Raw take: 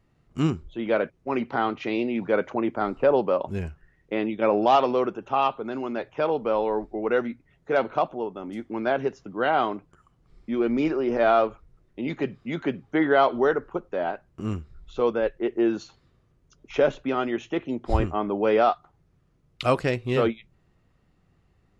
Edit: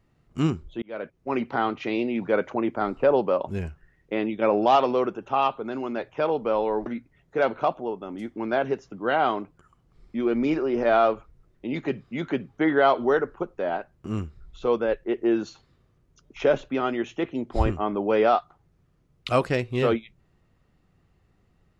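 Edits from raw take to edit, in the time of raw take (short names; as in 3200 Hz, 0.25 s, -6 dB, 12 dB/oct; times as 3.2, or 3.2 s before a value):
0.82–1.31 fade in linear
6.86–7.2 cut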